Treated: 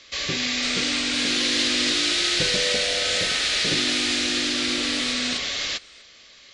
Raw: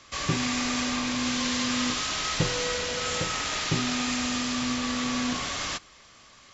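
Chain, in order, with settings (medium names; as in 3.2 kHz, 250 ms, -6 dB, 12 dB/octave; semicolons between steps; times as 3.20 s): ever faster or slower copies 522 ms, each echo +3 st, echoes 2; graphic EQ 125/500/1000/2000/4000 Hz -5/+7/-8/+7/+11 dB; trim -3 dB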